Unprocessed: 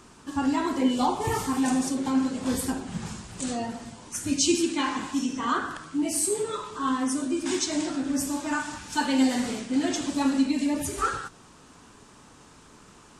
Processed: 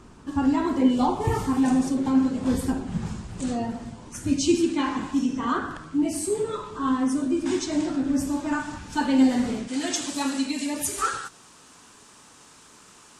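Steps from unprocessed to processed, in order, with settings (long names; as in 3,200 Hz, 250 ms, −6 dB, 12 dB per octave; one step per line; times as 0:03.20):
spectral tilt −2 dB per octave, from 0:09.67 +2 dB per octave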